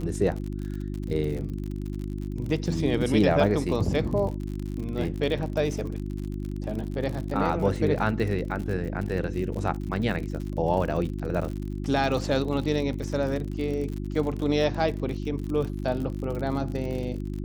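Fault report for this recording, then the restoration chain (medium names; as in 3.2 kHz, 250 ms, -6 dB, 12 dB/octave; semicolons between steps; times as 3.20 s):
crackle 53 per s -32 dBFS
hum 50 Hz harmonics 7 -32 dBFS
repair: de-click; de-hum 50 Hz, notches 7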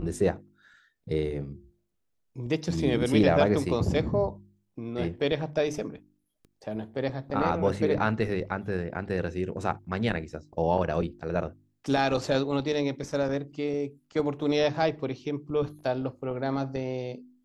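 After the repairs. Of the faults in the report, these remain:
nothing left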